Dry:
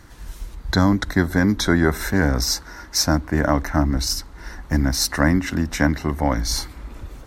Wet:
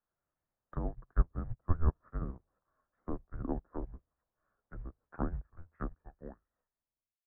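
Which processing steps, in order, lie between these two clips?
ending faded out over 1.84 s; low shelf 340 Hz +6 dB; notches 50/100/150/200/250/300 Hz; treble ducked by the level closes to 800 Hz, closed at -13 dBFS; companded quantiser 8-bit; air absorption 150 m; mistuned SSB -330 Hz 300–2300 Hz; upward expander 2.5:1, over -38 dBFS; gain -4.5 dB

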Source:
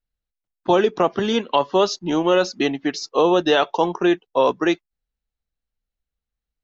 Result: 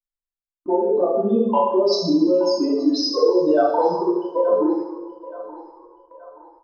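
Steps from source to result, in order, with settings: spectral contrast raised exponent 3.5; compressor 4:1, threshold -21 dBFS, peak gain reduction 7.5 dB; narrowing echo 0.875 s, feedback 55%, band-pass 1100 Hz, level -14 dB; two-slope reverb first 0.85 s, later 2.6 s, from -23 dB, DRR -7 dB; gate with hold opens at -41 dBFS

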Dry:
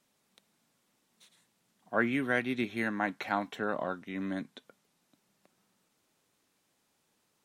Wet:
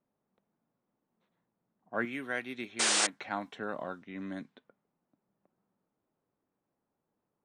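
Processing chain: 2.05–3.13 low shelf 250 Hz -10 dB; low-pass opened by the level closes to 950 Hz, open at -29.5 dBFS; 2.79–3.07 painted sound noise 300–9500 Hz -23 dBFS; gain -4.5 dB

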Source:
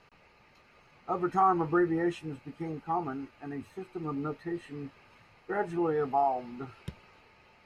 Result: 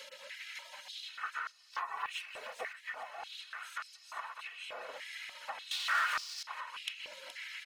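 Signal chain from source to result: per-bin compression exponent 0.6; 1.73–2.73 sample leveller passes 2; reverb removal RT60 0.6 s; comb 2.7 ms, depth 81%; compressor 8:1, threshold -40 dBFS, peak gain reduction 24.5 dB; echo 0.421 s -7.5 dB; spectral gate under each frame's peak -20 dB weak; 5.71–6.43 sample leveller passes 5; stepped high-pass 3.4 Hz 530–5000 Hz; gain +10 dB

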